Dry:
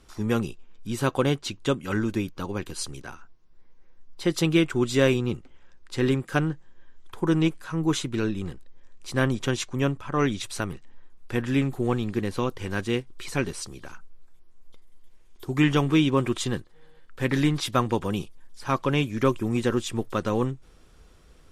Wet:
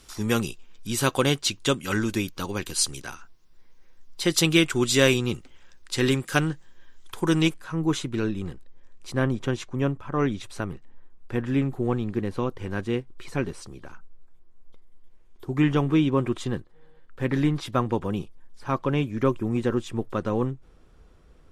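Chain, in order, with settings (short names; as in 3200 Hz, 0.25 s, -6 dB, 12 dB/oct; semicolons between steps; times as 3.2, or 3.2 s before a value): high shelf 2300 Hz +11 dB, from 7.54 s -3 dB, from 9.12 s -10 dB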